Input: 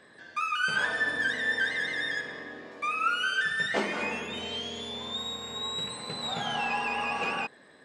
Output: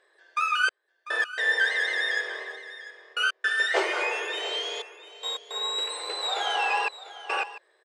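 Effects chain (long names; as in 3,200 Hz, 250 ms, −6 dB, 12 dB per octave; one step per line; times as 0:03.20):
noise gate −41 dBFS, range −13 dB
gate pattern "xxxxx...x.xxxxx" 109 BPM −60 dB
linear-phase brick-wall high-pass 330 Hz
single-tap delay 696 ms −15 dB
level +4.5 dB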